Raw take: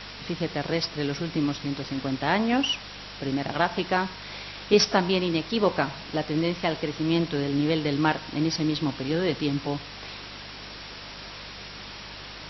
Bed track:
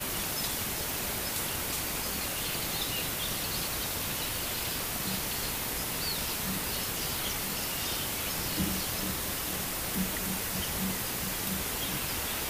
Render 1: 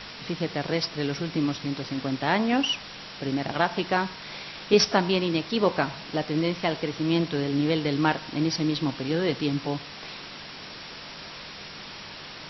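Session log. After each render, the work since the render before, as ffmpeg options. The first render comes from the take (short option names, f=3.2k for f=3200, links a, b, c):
-af "bandreject=f=50:t=h:w=4,bandreject=f=100:t=h:w=4"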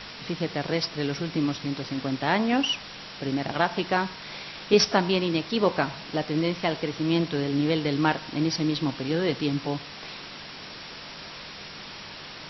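-af anull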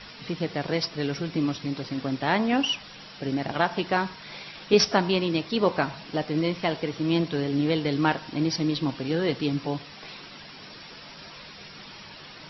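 -af "afftdn=nr=8:nf=-41"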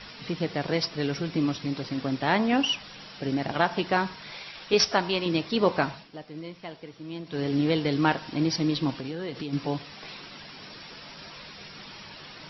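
-filter_complex "[0:a]asettb=1/sr,asplit=3[a][b][c];[a]atrim=end=4.304[d];[b]atrim=start=4.3:end=5.26,asetpts=PTS-STARTPTS,afade=t=in:d=0.004:c=qsin,afade=t=out:st=0.956:d=0.004:c=qsin,equalizer=f=200:t=o:w=2.1:g=-7[e];[c]atrim=start=5.256[f];[d][e]acrossfade=d=0.004:c1=hsin:c2=qsin[g];[g][f]acrossfade=d=0.004:c1=qsin:c2=hsin,asettb=1/sr,asplit=3[h][i][j];[h]atrim=end=8.934[k];[i]atrim=start=8.93:end=9.53,asetpts=PTS-STARTPTS,afade=t=in:d=0.004:c=qsin,afade=t=out:st=0.596:d=0.004:c=qsin,acompressor=threshold=-30dB:ratio=6:attack=3.2:release=140:knee=1:detection=peak[l];[j]atrim=start=9.526[m];[k][l]acrossfade=d=0.004:c1=hsin:c2=qsin[n];[n][m]acrossfade=d=0.004:c1=qsin:c2=hsin,asplit=3[o][p][q];[o]atrim=end=6.09,asetpts=PTS-STARTPTS,afade=t=out:st=5.88:d=0.21:silence=0.211349[r];[p]atrim=start=6.09:end=7.25,asetpts=PTS-STARTPTS,volume=-13.5dB[s];[q]atrim=start=7.25,asetpts=PTS-STARTPTS,afade=t=in:d=0.21:silence=0.211349[t];[r][s][t]concat=n=3:v=0:a=1"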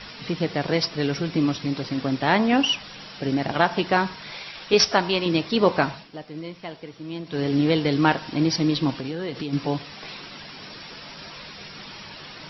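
-af "volume=4dB"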